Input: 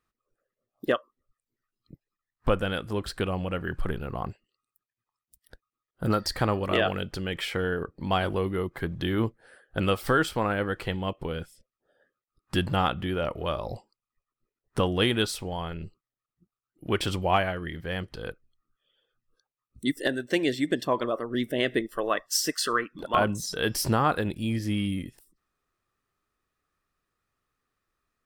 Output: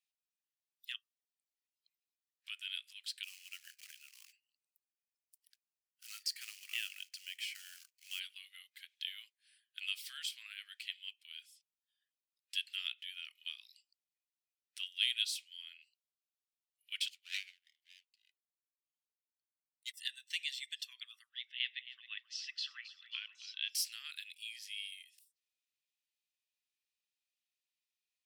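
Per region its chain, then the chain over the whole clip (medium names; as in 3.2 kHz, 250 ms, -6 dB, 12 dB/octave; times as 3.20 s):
3.23–8.20 s: short-mantissa float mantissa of 2-bit + peaking EQ 3.6 kHz -10 dB 0.41 oct
17.08–19.94 s: comb filter that takes the minimum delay 0.42 ms + upward expansion 2.5:1, over -37 dBFS
21.29–23.70 s: low-pass 3.9 kHz 24 dB/octave + echo whose repeats swap between lows and highs 134 ms, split 1.1 kHz, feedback 62%, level -10.5 dB
whole clip: steep high-pass 2.5 kHz 36 dB/octave; treble shelf 6 kHz -7 dB; trim -1.5 dB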